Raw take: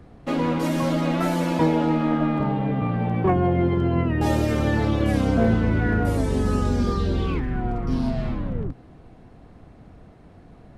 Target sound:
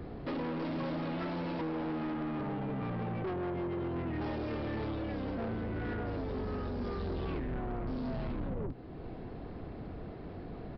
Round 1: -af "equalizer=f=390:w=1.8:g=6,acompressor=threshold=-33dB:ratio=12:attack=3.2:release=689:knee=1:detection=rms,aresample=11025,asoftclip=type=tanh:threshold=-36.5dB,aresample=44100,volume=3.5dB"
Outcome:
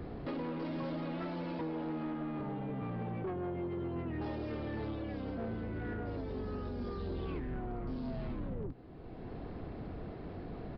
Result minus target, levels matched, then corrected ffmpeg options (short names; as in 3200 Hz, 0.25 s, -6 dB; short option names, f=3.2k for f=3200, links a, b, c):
compressor: peak gain reduction +6 dB
-af "equalizer=f=390:w=1.8:g=6,acompressor=threshold=-26.5dB:ratio=12:attack=3.2:release=689:knee=1:detection=rms,aresample=11025,asoftclip=type=tanh:threshold=-36.5dB,aresample=44100,volume=3.5dB"